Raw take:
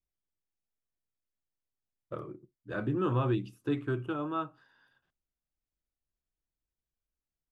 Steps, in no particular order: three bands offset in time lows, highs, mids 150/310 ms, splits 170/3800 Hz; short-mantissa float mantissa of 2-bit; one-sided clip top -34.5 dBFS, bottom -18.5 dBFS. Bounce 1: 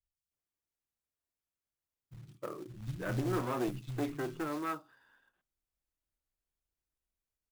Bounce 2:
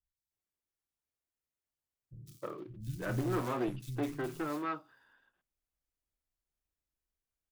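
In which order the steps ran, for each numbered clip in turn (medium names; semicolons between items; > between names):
one-sided clip > three bands offset in time > short-mantissa float; one-sided clip > short-mantissa float > three bands offset in time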